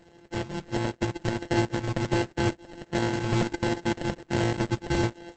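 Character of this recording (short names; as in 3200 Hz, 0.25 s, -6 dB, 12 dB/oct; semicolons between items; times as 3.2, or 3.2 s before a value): a buzz of ramps at a fixed pitch in blocks of 128 samples; phasing stages 2, 1.4 Hz, lowest notch 680–2000 Hz; aliases and images of a low sample rate 1200 Hz, jitter 0%; Opus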